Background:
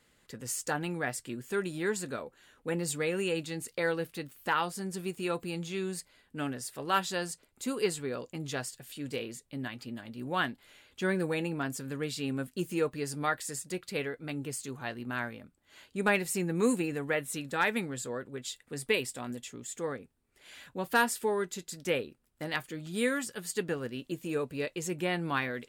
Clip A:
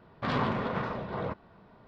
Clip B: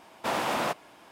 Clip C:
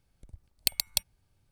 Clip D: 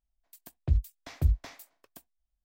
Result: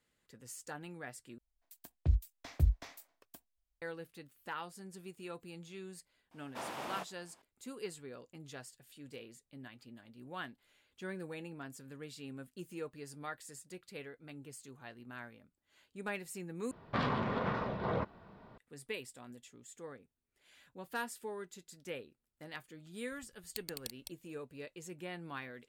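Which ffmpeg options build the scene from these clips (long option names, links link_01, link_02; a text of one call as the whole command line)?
ffmpeg -i bed.wav -i cue0.wav -i cue1.wav -i cue2.wav -i cue3.wav -filter_complex "[0:a]volume=-13dB[link_01];[1:a]alimiter=limit=-22dB:level=0:latency=1:release=406[link_02];[3:a]aecho=1:1:209:0.631[link_03];[link_01]asplit=3[link_04][link_05][link_06];[link_04]atrim=end=1.384[link_07];[4:a]atrim=end=2.44,asetpts=PTS-STARTPTS,volume=-4dB[link_08];[link_05]atrim=start=3.816:end=16.714[link_09];[link_02]atrim=end=1.87,asetpts=PTS-STARTPTS,volume=-0.5dB[link_10];[link_06]atrim=start=18.576[link_11];[2:a]atrim=end=1.11,asetpts=PTS-STARTPTS,volume=-14dB,afade=type=in:duration=0.004:curve=hsin,afade=type=out:start_time=1.106:duration=0.004:curve=hsin,adelay=6310[link_12];[link_03]atrim=end=1.51,asetpts=PTS-STARTPTS,volume=-17.5dB,afade=type=in:duration=0.004:curve=hsin,afade=type=out:start_time=1.506:duration=0.004:curve=hsin,adelay=22890[link_13];[link_07][link_08]acrossfade=duration=0.004:curve1=hsin:curve2=hsin[link_14];[link_14][link_09]acrossfade=duration=0.004:curve1=hsin:curve2=hsin[link_15];[link_15][link_10]acrossfade=duration=0.004:curve1=hsin:curve2=hsin[link_16];[link_16][link_11]acrossfade=duration=0.004:curve1=hsin:curve2=hsin[link_17];[link_17][link_12][link_13]amix=inputs=3:normalize=0" out.wav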